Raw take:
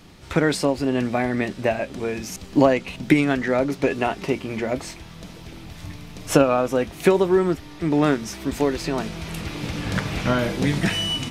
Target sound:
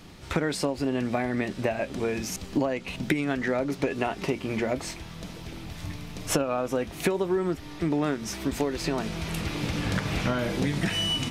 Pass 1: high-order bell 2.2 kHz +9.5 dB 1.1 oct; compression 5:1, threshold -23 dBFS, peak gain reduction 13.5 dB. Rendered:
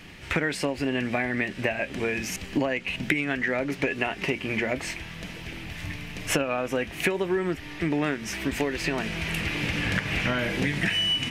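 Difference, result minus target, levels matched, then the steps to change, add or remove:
2 kHz band +5.5 dB
remove: high-order bell 2.2 kHz +9.5 dB 1.1 oct

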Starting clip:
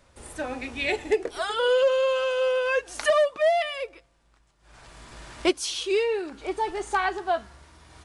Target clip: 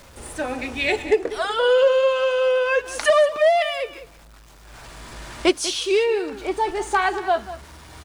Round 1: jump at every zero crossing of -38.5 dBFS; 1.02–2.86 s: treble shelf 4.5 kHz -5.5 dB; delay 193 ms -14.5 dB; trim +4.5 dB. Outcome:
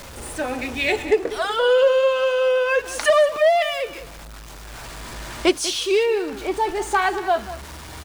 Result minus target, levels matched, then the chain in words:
jump at every zero crossing: distortion +10 dB
jump at every zero crossing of -49 dBFS; 1.02–2.86 s: treble shelf 4.5 kHz -5.5 dB; delay 193 ms -14.5 dB; trim +4.5 dB

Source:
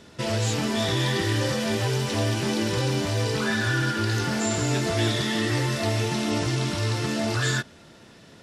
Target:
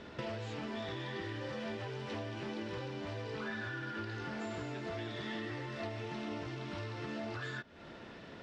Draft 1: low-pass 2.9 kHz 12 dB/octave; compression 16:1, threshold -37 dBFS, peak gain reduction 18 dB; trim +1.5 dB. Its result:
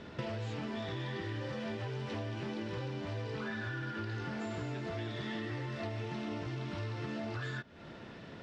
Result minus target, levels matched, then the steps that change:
125 Hz band +3.0 dB
add after compression: peaking EQ 130 Hz -5.5 dB 1.4 oct

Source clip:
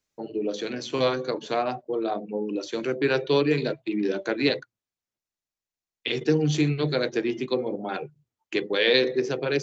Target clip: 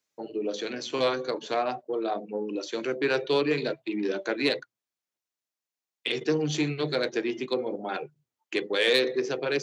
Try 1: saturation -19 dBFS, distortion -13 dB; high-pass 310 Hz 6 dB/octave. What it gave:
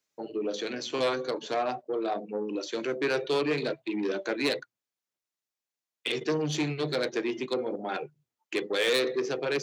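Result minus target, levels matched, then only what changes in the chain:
saturation: distortion +10 dB
change: saturation -11.5 dBFS, distortion -23 dB

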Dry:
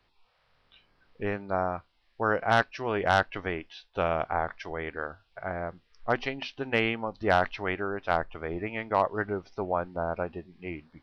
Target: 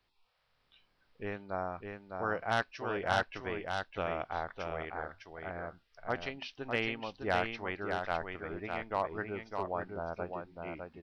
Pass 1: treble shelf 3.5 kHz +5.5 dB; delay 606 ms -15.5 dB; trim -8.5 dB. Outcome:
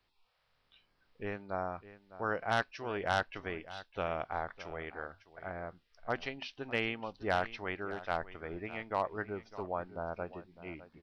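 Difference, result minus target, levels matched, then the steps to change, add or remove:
echo-to-direct -10.5 dB
change: delay 606 ms -5 dB

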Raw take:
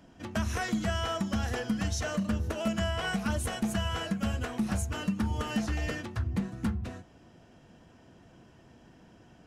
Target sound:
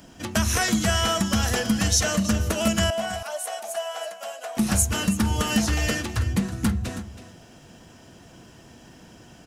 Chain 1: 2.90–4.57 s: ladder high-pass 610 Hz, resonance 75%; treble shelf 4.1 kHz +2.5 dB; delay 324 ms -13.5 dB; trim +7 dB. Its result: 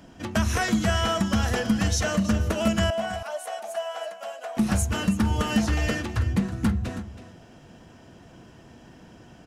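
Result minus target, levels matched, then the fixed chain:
8 kHz band -6.5 dB
2.90–4.57 s: ladder high-pass 610 Hz, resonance 75%; treble shelf 4.1 kHz +13.5 dB; delay 324 ms -13.5 dB; trim +7 dB

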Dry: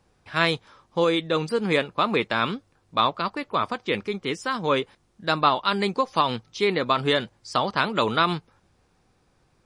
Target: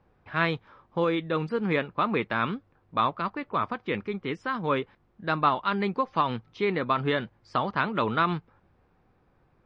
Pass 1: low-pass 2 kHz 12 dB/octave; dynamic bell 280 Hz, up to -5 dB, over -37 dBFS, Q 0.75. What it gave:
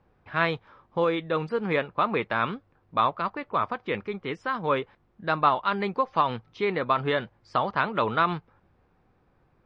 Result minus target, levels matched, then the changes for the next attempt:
250 Hz band -3.5 dB
change: dynamic bell 570 Hz, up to -5 dB, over -37 dBFS, Q 0.75

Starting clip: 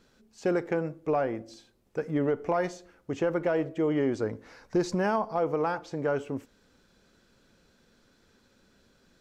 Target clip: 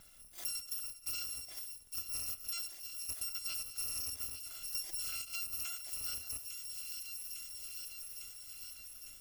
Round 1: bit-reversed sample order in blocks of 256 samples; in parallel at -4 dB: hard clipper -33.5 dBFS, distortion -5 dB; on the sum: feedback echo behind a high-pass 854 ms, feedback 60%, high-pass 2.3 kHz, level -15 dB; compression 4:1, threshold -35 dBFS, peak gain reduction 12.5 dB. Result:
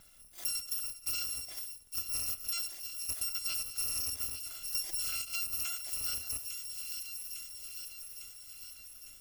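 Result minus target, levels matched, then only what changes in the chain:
compression: peak gain reduction -4.5 dB
change: compression 4:1, threshold -41 dBFS, peak gain reduction 17 dB

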